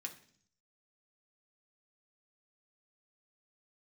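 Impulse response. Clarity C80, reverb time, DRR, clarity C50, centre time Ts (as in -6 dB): 16.5 dB, 0.55 s, 1.5 dB, 12.5 dB, 10 ms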